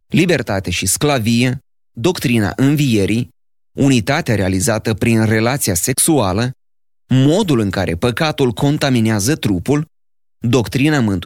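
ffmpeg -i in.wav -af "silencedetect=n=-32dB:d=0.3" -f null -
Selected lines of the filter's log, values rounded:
silence_start: 1.58
silence_end: 1.97 | silence_duration: 0.39
silence_start: 3.26
silence_end: 3.77 | silence_duration: 0.51
silence_start: 6.52
silence_end: 7.11 | silence_duration: 0.59
silence_start: 9.84
silence_end: 10.44 | silence_duration: 0.60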